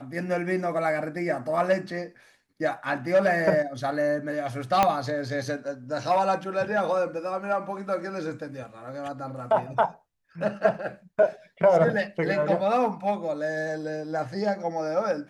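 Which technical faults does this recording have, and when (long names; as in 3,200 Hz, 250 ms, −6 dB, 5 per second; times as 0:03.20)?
0:04.83: click −7 dBFS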